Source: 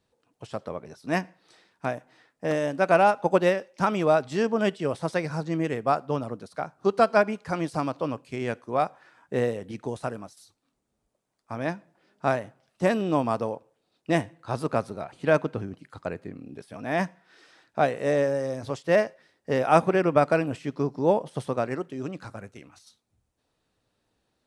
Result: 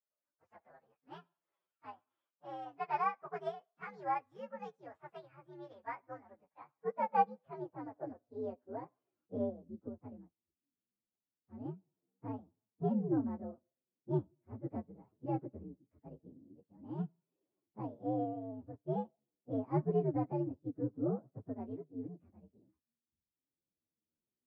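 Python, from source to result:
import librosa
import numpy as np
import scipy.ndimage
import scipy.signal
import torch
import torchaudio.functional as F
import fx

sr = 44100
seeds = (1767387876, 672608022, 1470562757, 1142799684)

y = fx.partial_stretch(x, sr, pct=129)
y = fx.tilt_shelf(y, sr, db=7.5, hz=1100.0)
y = fx.filter_sweep_bandpass(y, sr, from_hz=1500.0, to_hz=260.0, start_s=5.85, end_s=9.79, q=1.1)
y = fx.upward_expand(y, sr, threshold_db=-42.0, expansion=1.5)
y = y * 10.0 ** (-6.5 / 20.0)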